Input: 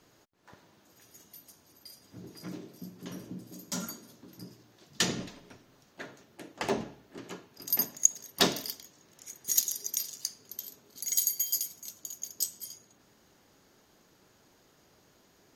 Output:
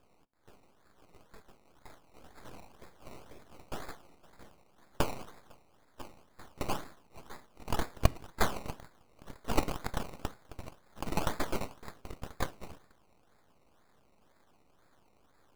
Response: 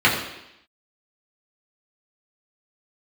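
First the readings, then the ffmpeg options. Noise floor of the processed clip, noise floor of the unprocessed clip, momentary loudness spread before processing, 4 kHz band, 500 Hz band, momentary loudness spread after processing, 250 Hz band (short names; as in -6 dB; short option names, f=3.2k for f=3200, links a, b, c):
-66 dBFS, -64 dBFS, 22 LU, -10.5 dB, -0.5 dB, 21 LU, -1.5 dB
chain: -filter_complex "[0:a]lowshelf=f=370:t=q:w=1.5:g=-7.5,acrusher=samples=21:mix=1:aa=0.000001:lfo=1:lforange=12.6:lforate=2,aeval=exprs='abs(val(0))':c=same,asplit=2[a][b];[1:a]atrim=start_sample=2205,atrim=end_sample=4410,asetrate=48510,aresample=44100[c];[b][c]afir=irnorm=-1:irlink=0,volume=-38.5dB[d];[a][d]amix=inputs=2:normalize=0"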